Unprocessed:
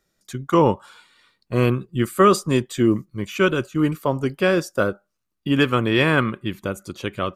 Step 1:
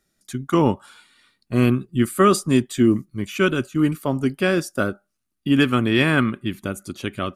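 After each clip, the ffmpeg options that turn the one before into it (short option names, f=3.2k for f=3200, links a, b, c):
-af "equalizer=f=250:t=o:w=0.33:g=6,equalizer=f=500:t=o:w=0.33:g=-7,equalizer=f=1k:t=o:w=0.33:g=-6,equalizer=f=10k:t=o:w=0.33:g=8"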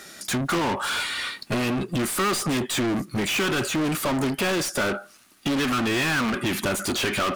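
-filter_complex "[0:a]aeval=exprs='0.668*(cos(1*acos(clip(val(0)/0.668,-1,1)))-cos(1*PI/2))+0.0668*(cos(5*acos(clip(val(0)/0.668,-1,1)))-cos(5*PI/2))+0.133*(cos(6*acos(clip(val(0)/0.668,-1,1)))-cos(6*PI/2))':c=same,acompressor=threshold=-22dB:ratio=5,asplit=2[a][b];[b]highpass=f=720:p=1,volume=37dB,asoftclip=type=tanh:threshold=-15.5dB[c];[a][c]amix=inputs=2:normalize=0,lowpass=f=5.5k:p=1,volume=-6dB,volume=-2dB"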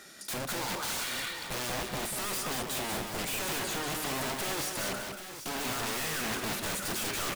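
-filter_complex "[0:a]aeval=exprs='(mod(15.8*val(0)+1,2)-1)/15.8':c=same,asplit=2[a][b];[b]aecho=0:1:50|190|737|786:0.237|0.531|0.237|0.282[c];[a][c]amix=inputs=2:normalize=0,volume=-8dB"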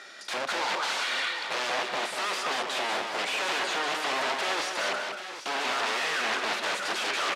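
-af "highpass=540,lowpass=4.1k,volume=8dB"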